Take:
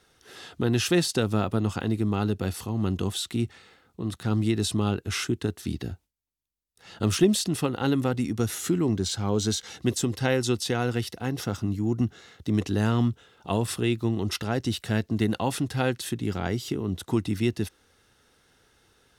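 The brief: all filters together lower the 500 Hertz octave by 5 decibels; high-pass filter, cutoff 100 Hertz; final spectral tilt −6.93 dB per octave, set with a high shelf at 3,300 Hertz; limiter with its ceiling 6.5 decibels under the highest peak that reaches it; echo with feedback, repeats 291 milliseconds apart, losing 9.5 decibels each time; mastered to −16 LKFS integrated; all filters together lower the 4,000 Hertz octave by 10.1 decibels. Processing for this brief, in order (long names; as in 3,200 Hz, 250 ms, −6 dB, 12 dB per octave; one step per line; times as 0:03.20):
high-pass filter 100 Hz
parametric band 500 Hz −7 dB
high-shelf EQ 3,300 Hz −6 dB
parametric band 4,000 Hz −8.5 dB
brickwall limiter −18.5 dBFS
repeating echo 291 ms, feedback 33%, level −9.5 dB
level +15 dB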